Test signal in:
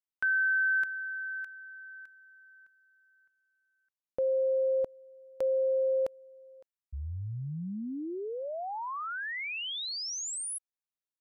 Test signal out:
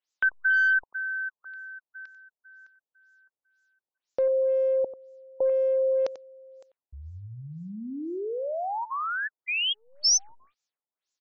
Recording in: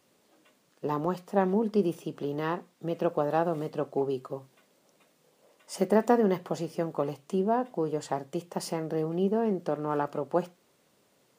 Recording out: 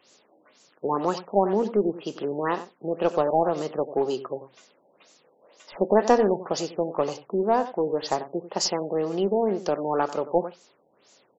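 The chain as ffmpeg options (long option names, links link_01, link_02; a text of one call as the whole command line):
ffmpeg -i in.wav -filter_complex "[0:a]bass=frequency=250:gain=-11,treble=frequency=4000:gain=15,acrossover=split=7900[link_01][link_02];[link_02]acompressor=threshold=-47dB:ratio=4:attack=1:release=60[link_03];[link_01][link_03]amix=inputs=2:normalize=0,aecho=1:1:92:0.188,asplit=2[link_04][link_05];[link_05]aeval=exprs='clip(val(0),-1,0.0398)':channel_layout=same,volume=-7dB[link_06];[link_04][link_06]amix=inputs=2:normalize=0,afftfilt=real='re*lt(b*sr/1024,910*pow(7900/910,0.5+0.5*sin(2*PI*2*pts/sr)))':imag='im*lt(b*sr/1024,910*pow(7900/910,0.5+0.5*sin(2*PI*2*pts/sr)))':win_size=1024:overlap=0.75,volume=3dB" out.wav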